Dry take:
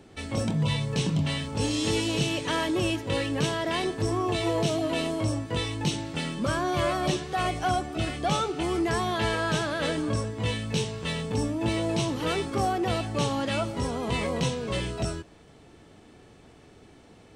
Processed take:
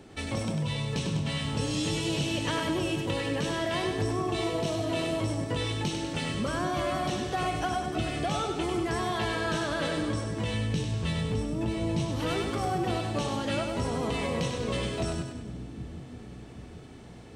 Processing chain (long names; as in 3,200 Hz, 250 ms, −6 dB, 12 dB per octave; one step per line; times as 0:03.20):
0:10.54–0:12.05: parametric band 72 Hz +11 dB 2.6 octaves
downward compressor, threshold −29 dBFS, peak gain reduction 12 dB
echo with a time of its own for lows and highs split 300 Hz, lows 780 ms, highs 98 ms, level −5.5 dB
level +1.5 dB